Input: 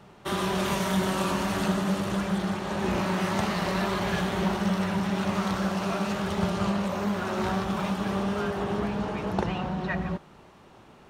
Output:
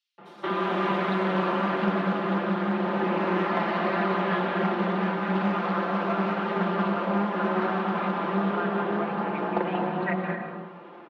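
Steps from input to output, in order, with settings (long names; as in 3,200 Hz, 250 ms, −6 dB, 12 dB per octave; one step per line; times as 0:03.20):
Bessel high-pass filter 310 Hz, order 6
high-shelf EQ 8,700 Hz −6.5 dB
comb filter 5.8 ms
in parallel at +2 dB: downward compressor, threshold −36 dBFS, peak gain reduction 13.5 dB
on the sum: high-frequency loss of the air 370 metres
multiband delay without the direct sound highs, lows 180 ms, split 5,300 Hz
on a send at −3.5 dB: convolution reverb RT60 0.80 s, pre-delay 169 ms
on the sum: highs frequency-modulated by the lows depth 0.22 ms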